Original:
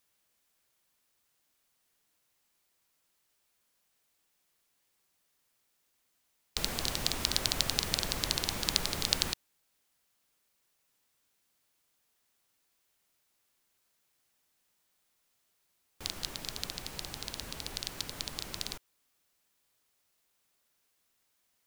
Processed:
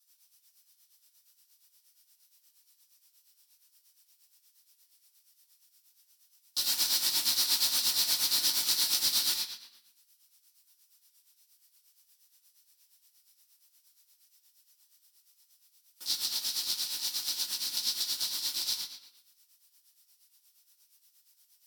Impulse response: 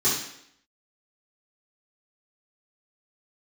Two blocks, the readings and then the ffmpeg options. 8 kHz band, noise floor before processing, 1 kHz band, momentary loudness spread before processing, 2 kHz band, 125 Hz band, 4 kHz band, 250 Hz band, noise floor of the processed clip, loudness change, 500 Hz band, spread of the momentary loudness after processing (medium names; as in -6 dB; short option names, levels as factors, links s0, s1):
+6.5 dB, -76 dBFS, -4.5 dB, 11 LU, -2.0 dB, under -15 dB, +5.0 dB, -10.5 dB, -71 dBFS, +5.5 dB, -11.5 dB, 8 LU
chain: -filter_complex "[0:a]aderivative,asoftclip=type=tanh:threshold=0.0794[s0];[1:a]atrim=start_sample=2205,asetrate=35721,aresample=44100[s1];[s0][s1]afir=irnorm=-1:irlink=0,tremolo=f=8.5:d=0.67"